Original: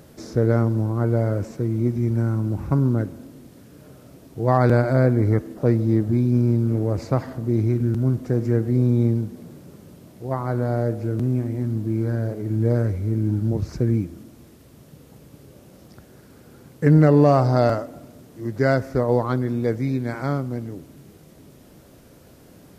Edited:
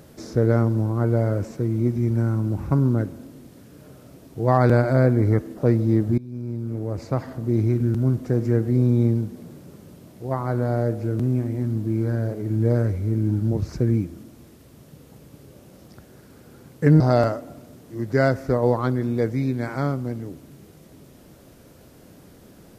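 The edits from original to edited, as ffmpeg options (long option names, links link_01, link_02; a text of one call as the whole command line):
ffmpeg -i in.wav -filter_complex "[0:a]asplit=3[link_01][link_02][link_03];[link_01]atrim=end=6.18,asetpts=PTS-STARTPTS,afade=type=out:start_time=6.176:duration=0.004:curve=hsin:silence=0.0794328[link_04];[link_02]atrim=start=6.18:end=17.002,asetpts=PTS-STARTPTS,afade=type=in:duration=1.4:silence=0.0794328[link_05];[link_03]atrim=start=17.458[link_06];[link_04][link_05]concat=n=2:v=0:a=1[link_07];[link_07][link_06]acrossfade=duration=0.004:curve1=hsin:curve2=hsin" out.wav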